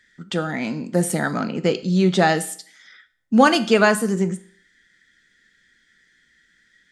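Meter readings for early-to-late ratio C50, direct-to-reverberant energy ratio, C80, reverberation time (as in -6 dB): 16.5 dB, 10.5 dB, 20.0 dB, 0.55 s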